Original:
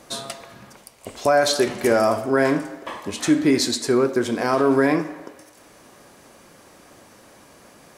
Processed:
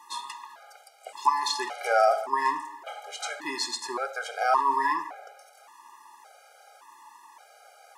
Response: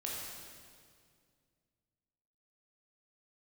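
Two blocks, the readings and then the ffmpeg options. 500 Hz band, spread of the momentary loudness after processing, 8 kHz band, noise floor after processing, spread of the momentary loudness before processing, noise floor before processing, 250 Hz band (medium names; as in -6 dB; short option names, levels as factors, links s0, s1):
-11.0 dB, 18 LU, -8.5 dB, -55 dBFS, 16 LU, -50 dBFS, -23.5 dB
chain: -filter_complex "[0:a]acrossover=split=8900[s0][s1];[s1]acompressor=threshold=0.00447:ratio=4:attack=1:release=60[s2];[s0][s2]amix=inputs=2:normalize=0,highpass=f=880:t=q:w=4.9,afftfilt=real='re*gt(sin(2*PI*0.88*pts/sr)*(1-2*mod(floor(b*sr/1024/410),2)),0)':imag='im*gt(sin(2*PI*0.88*pts/sr)*(1-2*mod(floor(b*sr/1024/410),2)),0)':win_size=1024:overlap=0.75,volume=0.668"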